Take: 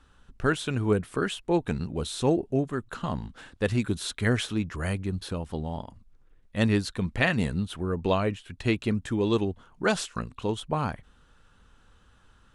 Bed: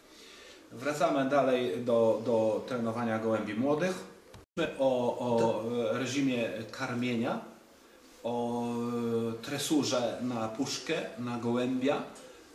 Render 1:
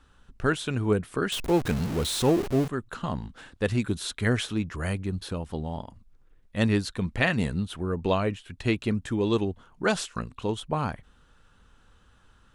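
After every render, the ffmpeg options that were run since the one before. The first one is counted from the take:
-filter_complex "[0:a]asettb=1/sr,asplit=3[s0][s1][s2];[s0]atrim=end=1.324[s3];[s1]atrim=start=1.32:end=2.68,asetpts=PTS-STARTPTS,afade=t=in:d=0.004:c=qsin,afade=t=out:st=1.356:d=0.004:c=qsin,aeval=exprs='val(0)+0.5*0.0376*sgn(val(0))':c=same[s4];[s2]atrim=start=2.676[s5];[s3][s4]acrossfade=d=0.004:c1=hsin:c2=qsin[s6];[s6][s5]acrossfade=d=0.004:c1=qsin:c2=hsin"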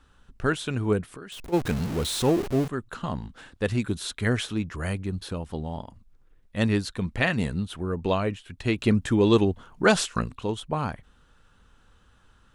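-filter_complex "[0:a]asplit=3[s0][s1][s2];[s0]afade=t=out:st=1.05:d=0.02[s3];[s1]acompressor=threshold=0.00794:ratio=3:attack=3.2:release=140:knee=1:detection=peak,afade=t=in:st=1.05:d=0.02,afade=t=out:st=1.52:d=0.02[s4];[s2]afade=t=in:st=1.52:d=0.02[s5];[s3][s4][s5]amix=inputs=3:normalize=0,asettb=1/sr,asplit=3[s6][s7][s8];[s6]atrim=end=8.784[s9];[s7]atrim=start=8.78:end=10.36,asetpts=PTS-STARTPTS,afade=t=in:d=0.004:c=qsin,afade=t=out:st=1.576:d=0.004:c=qsin,acontrast=45[s10];[s8]atrim=start=10.356[s11];[s9][s10]acrossfade=d=0.004:c1=hsin:c2=qsin[s12];[s12][s11]acrossfade=d=0.004:c1=qsin:c2=hsin"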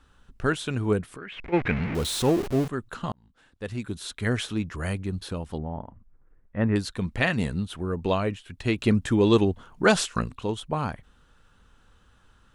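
-filter_complex "[0:a]asettb=1/sr,asplit=3[s0][s1][s2];[s0]atrim=end=1.184[s3];[s1]atrim=start=1.18:end=1.95,asetpts=PTS-STARTPTS,afade=t=in:d=0.004:c=qsin,afade=t=out:st=0.766:d=0.004:c=qsin,lowpass=f=2200:t=q:w=4.4[s4];[s2]atrim=start=1.946[s5];[s3][s4]acrossfade=d=0.004:c1=hsin:c2=qsin[s6];[s6][s5]acrossfade=d=0.004:c1=qsin:c2=hsin,asettb=1/sr,asplit=3[s7][s8][s9];[s7]atrim=end=5.584[s10];[s8]atrim=start=5.58:end=6.76,asetpts=PTS-STARTPTS,afade=t=in:d=0.004:c=qsin,afade=t=out:st=1.176:d=0.004:c=qsin,lowpass=f=1900:w=0.5412,lowpass=f=1900:w=1.3066[s11];[s9]atrim=start=6.756[s12];[s10][s11]acrossfade=d=0.004:c1=hsin:c2=qsin[s13];[s13][s12]acrossfade=d=0.004:c1=qsin:c2=hsin,asplit=2[s14][s15];[s14]atrim=end=3.12,asetpts=PTS-STARTPTS,afade=t=out:st=3.116:d=0.004:c=hsin[s16];[s15]atrim=start=3.12,asetpts=PTS-STARTPTS,afade=t=in:d=1.38[s17];[s16][s17]concat=n=2:v=0:a=1"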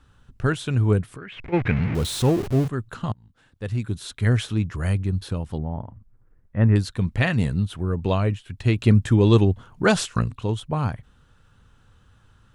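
-af "equalizer=f=110:t=o:w=1.1:g=10.5"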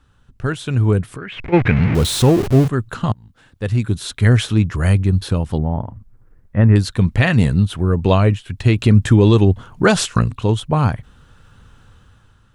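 -af "alimiter=limit=0.316:level=0:latency=1:release=140,dynaudnorm=f=190:g=9:m=3.76"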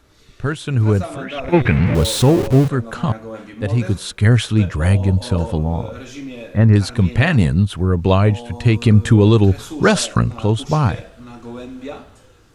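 -filter_complex "[1:a]volume=0.794[s0];[0:a][s0]amix=inputs=2:normalize=0"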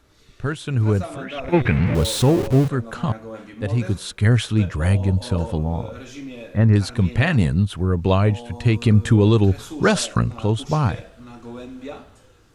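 -af "volume=0.668"

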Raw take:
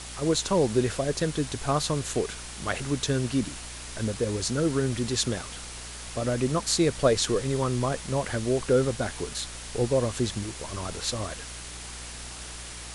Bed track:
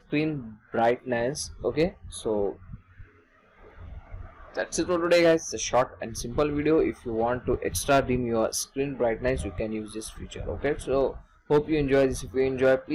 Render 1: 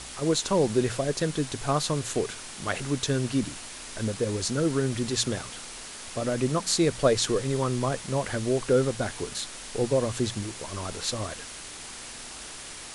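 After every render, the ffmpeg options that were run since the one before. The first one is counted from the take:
-af "bandreject=f=60:t=h:w=4,bandreject=f=120:t=h:w=4,bandreject=f=180:t=h:w=4"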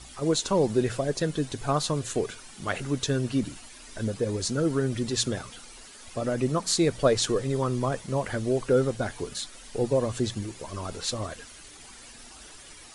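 -af "afftdn=nr=11:nf=-41"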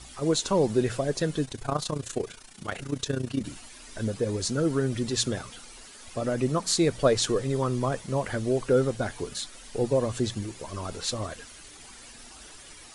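-filter_complex "[0:a]asettb=1/sr,asplit=3[s0][s1][s2];[s0]atrim=end=1.454[s3];[s1]atrim=start=1.45:end=3.45,asetpts=PTS-STARTPTS,afade=t=in:d=0.004:c=qsin,afade=t=out:st=1.996:d=0.004:c=qsin,tremolo=f=29:d=0.788[s4];[s2]atrim=start=3.446[s5];[s3][s4]acrossfade=d=0.004:c1=hsin:c2=qsin[s6];[s6][s5]acrossfade=d=0.004:c1=qsin:c2=hsin"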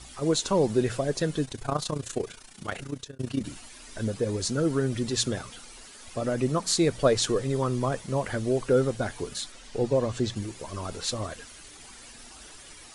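-filter_complex "[0:a]asettb=1/sr,asplit=3[s0][s1][s2];[s0]atrim=end=9.524[s3];[s1]atrim=start=9.52:end=10.36,asetpts=PTS-STARTPTS,afade=t=in:d=0.004:c=qsin,afade=t=out:st=0.836:d=0.004:c=qsin,lowpass=7200[s4];[s2]atrim=start=10.356[s5];[s3][s4]acrossfade=d=0.004:c1=hsin:c2=qsin[s6];[s6][s5]acrossfade=d=0.004:c1=qsin:c2=hsin,asplit=2[s7][s8];[s7]atrim=end=3.19,asetpts=PTS-STARTPTS,afade=t=out:st=2.78:d=0.41[s9];[s8]atrim=start=3.19,asetpts=PTS-STARTPTS,afade=t=in:d=0.004:c=hsin[s10];[s9][s10]concat=n=2:v=0:a=1"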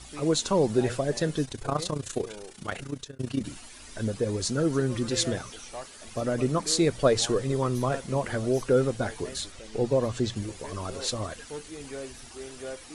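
-filter_complex "[1:a]volume=0.141[s0];[0:a][s0]amix=inputs=2:normalize=0"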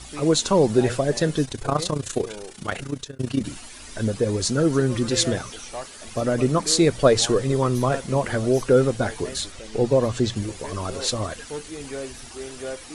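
-af "volume=1.88"

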